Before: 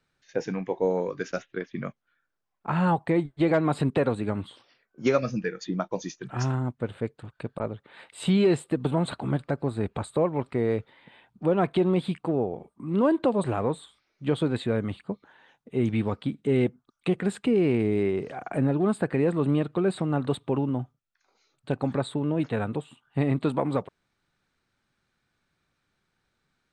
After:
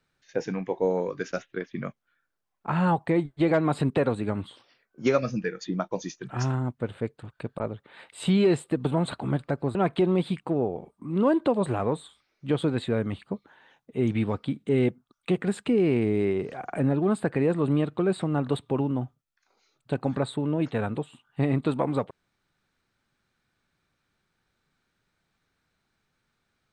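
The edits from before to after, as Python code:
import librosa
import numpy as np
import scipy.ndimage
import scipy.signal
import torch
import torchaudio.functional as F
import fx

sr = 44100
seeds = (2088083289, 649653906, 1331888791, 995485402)

y = fx.edit(x, sr, fx.cut(start_s=9.75, length_s=1.78), tone=tone)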